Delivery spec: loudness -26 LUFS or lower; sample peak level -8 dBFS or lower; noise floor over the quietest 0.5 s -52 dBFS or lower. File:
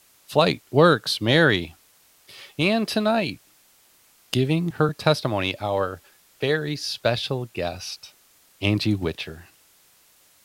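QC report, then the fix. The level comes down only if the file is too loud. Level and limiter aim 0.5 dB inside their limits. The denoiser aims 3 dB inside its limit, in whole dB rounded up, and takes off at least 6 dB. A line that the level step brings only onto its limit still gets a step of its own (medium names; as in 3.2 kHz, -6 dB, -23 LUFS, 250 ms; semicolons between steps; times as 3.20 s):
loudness -23.0 LUFS: fail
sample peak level -3.5 dBFS: fail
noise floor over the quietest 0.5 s -58 dBFS: pass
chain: trim -3.5 dB; peak limiter -8.5 dBFS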